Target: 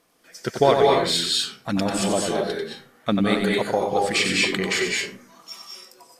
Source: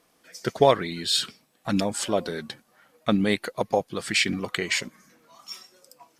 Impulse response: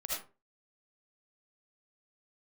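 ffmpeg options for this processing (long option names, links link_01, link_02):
-filter_complex "[0:a]asplit=2[link_01][link_02];[1:a]atrim=start_sample=2205,asetrate=27342,aresample=44100,adelay=92[link_03];[link_02][link_03]afir=irnorm=-1:irlink=0,volume=-4dB[link_04];[link_01][link_04]amix=inputs=2:normalize=0"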